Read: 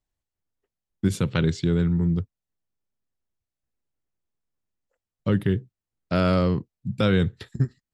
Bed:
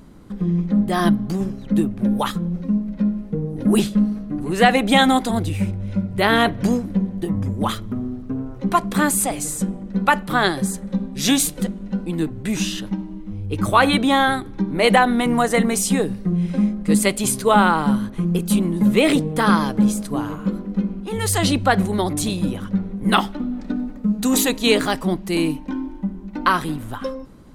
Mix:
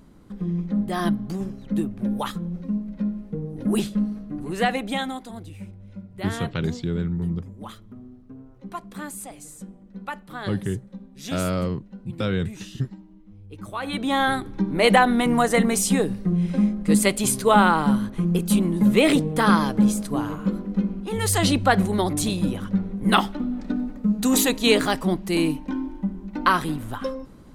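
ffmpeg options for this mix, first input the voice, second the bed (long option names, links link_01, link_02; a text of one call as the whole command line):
ffmpeg -i stem1.wav -i stem2.wav -filter_complex "[0:a]adelay=5200,volume=-4dB[link_01];[1:a]volume=9dB,afade=type=out:start_time=4.45:duration=0.71:silence=0.298538,afade=type=in:start_time=13.81:duration=0.61:silence=0.177828[link_02];[link_01][link_02]amix=inputs=2:normalize=0" out.wav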